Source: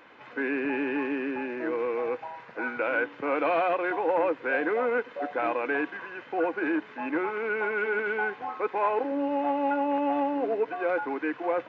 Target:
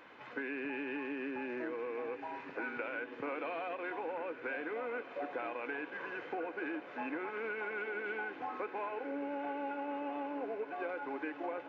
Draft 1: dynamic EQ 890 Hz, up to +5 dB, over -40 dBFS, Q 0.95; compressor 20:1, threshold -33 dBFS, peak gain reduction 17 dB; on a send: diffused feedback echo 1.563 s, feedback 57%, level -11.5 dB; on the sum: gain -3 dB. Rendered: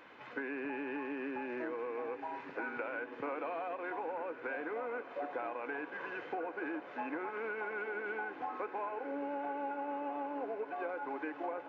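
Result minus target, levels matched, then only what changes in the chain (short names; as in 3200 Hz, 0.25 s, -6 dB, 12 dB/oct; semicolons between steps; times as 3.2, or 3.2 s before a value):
4000 Hz band -4.0 dB
change: dynamic EQ 3000 Hz, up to +5 dB, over -40 dBFS, Q 0.95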